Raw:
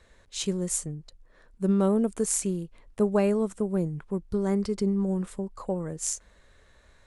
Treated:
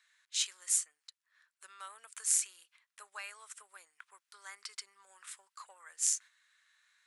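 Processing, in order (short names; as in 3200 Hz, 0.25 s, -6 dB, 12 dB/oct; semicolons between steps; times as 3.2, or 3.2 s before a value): gate -46 dBFS, range -7 dB; compressor 2:1, threshold -27 dBFS, peak gain reduction 5 dB; HPF 1400 Hz 24 dB/oct; gain +1.5 dB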